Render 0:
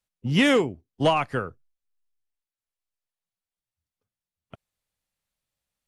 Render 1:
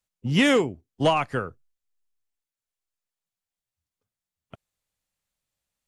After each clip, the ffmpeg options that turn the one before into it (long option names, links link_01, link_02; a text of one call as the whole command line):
ffmpeg -i in.wav -af "equalizer=frequency=7100:width_type=o:width=0.4:gain=3.5" out.wav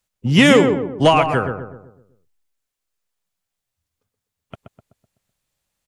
ffmpeg -i in.wav -filter_complex "[0:a]asplit=2[link_01][link_02];[link_02]adelay=126,lowpass=frequency=1300:poles=1,volume=-5.5dB,asplit=2[link_03][link_04];[link_04]adelay=126,lowpass=frequency=1300:poles=1,volume=0.47,asplit=2[link_05][link_06];[link_06]adelay=126,lowpass=frequency=1300:poles=1,volume=0.47,asplit=2[link_07][link_08];[link_08]adelay=126,lowpass=frequency=1300:poles=1,volume=0.47,asplit=2[link_09][link_10];[link_10]adelay=126,lowpass=frequency=1300:poles=1,volume=0.47,asplit=2[link_11][link_12];[link_12]adelay=126,lowpass=frequency=1300:poles=1,volume=0.47[link_13];[link_01][link_03][link_05][link_07][link_09][link_11][link_13]amix=inputs=7:normalize=0,volume=7.5dB" out.wav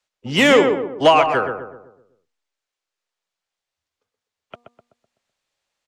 ffmpeg -i in.wav -filter_complex "[0:a]acrossover=split=320 7100:gain=0.178 1 0.112[link_01][link_02][link_03];[link_01][link_02][link_03]amix=inputs=3:normalize=0,bandreject=frequency=239.4:width_type=h:width=4,bandreject=frequency=478.8:width_type=h:width=4,bandreject=frequency=718.2:width_type=h:width=4,bandreject=frequency=957.6:width_type=h:width=4,bandreject=frequency=1197:width_type=h:width=4,acrossover=split=300|1100[link_04][link_05][link_06];[link_06]asoftclip=type=tanh:threshold=-13dB[link_07];[link_04][link_05][link_07]amix=inputs=3:normalize=0,volume=2dB" out.wav